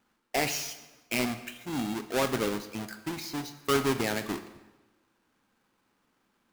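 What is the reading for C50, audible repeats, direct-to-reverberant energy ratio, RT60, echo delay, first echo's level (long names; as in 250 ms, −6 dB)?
12.0 dB, no echo audible, 10.0 dB, 1.2 s, no echo audible, no echo audible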